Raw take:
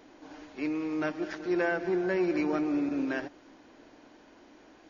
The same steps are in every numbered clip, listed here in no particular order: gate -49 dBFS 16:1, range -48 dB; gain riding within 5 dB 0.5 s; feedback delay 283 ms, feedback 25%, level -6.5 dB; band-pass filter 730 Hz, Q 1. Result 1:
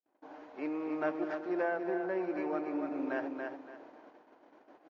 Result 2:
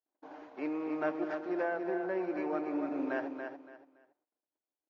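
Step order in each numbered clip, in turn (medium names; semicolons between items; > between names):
feedback delay > gain riding > gate > band-pass filter; gate > band-pass filter > gain riding > feedback delay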